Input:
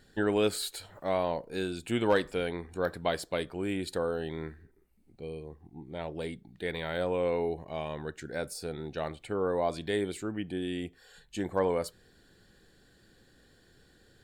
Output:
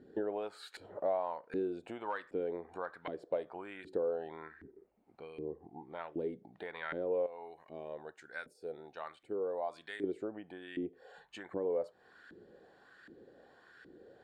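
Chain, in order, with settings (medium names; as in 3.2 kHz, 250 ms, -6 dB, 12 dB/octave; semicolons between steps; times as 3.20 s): 7.26–10.04 s: pre-emphasis filter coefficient 0.8; compression 4:1, threshold -43 dBFS, peak gain reduction 18.5 dB; LFO band-pass saw up 1.3 Hz 300–1700 Hz; trim +12.5 dB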